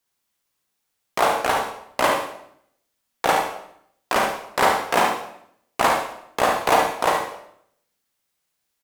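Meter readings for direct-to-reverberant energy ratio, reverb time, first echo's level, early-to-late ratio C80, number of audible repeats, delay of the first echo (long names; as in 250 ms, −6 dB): 0.5 dB, 0.70 s, −6.5 dB, 8.0 dB, 1, 72 ms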